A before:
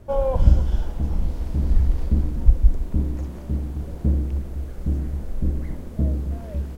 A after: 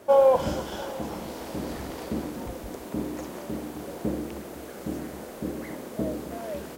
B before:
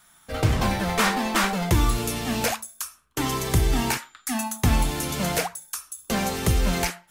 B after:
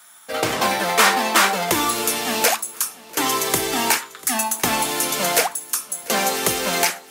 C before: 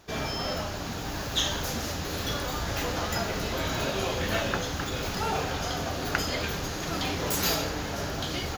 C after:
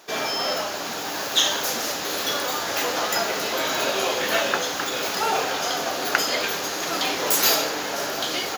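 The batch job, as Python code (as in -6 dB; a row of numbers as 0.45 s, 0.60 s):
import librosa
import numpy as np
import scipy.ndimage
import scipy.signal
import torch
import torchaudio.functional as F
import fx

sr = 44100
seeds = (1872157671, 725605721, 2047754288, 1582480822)

y = scipy.signal.sosfilt(scipy.signal.butter(2, 380.0, 'highpass', fs=sr, output='sos'), x)
y = fx.high_shelf(y, sr, hz=7500.0, db=4.0)
y = fx.echo_feedback(y, sr, ms=693, feedback_pct=36, wet_db=-21.5)
y = y * 10.0 ** (7.0 / 20.0)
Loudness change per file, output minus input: -6.0 LU, +5.5 LU, +6.5 LU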